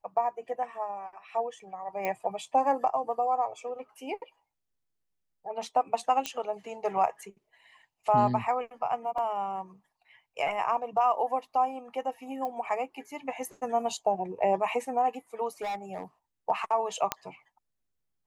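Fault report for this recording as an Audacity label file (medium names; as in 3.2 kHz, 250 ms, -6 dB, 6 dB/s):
2.050000	2.050000	pop -18 dBFS
6.260000	6.260000	pop -15 dBFS
9.180000	9.180000	dropout 3.7 ms
12.450000	12.450000	pop -23 dBFS
15.610000	16.030000	clipped -30 dBFS
17.120000	17.120000	pop -9 dBFS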